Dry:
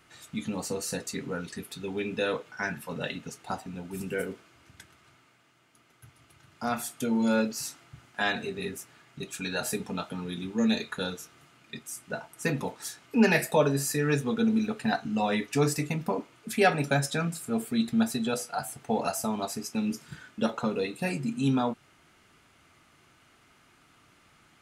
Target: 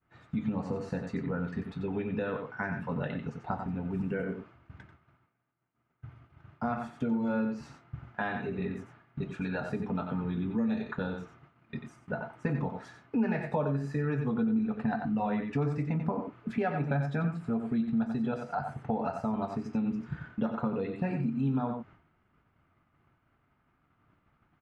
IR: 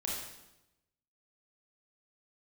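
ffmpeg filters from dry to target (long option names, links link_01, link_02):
-filter_complex "[0:a]lowshelf=frequency=210:gain=4.5,asplit=2[link_01][link_02];[link_02]aecho=0:1:91:0.398[link_03];[link_01][link_03]amix=inputs=2:normalize=0,acompressor=threshold=-32dB:ratio=3,lowpass=1300,agate=range=-33dB:threshold=-52dB:ratio=3:detection=peak,equalizer=frequency=410:width_type=o:width=1.7:gain=-5,volume=5.5dB"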